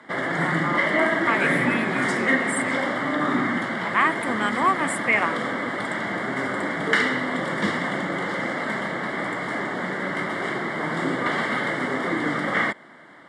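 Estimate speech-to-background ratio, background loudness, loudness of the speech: -1.5 dB, -24.5 LUFS, -26.0 LUFS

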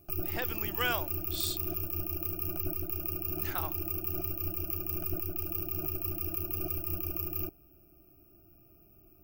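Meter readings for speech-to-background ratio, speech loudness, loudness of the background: -4.0 dB, -37.0 LUFS, -33.0 LUFS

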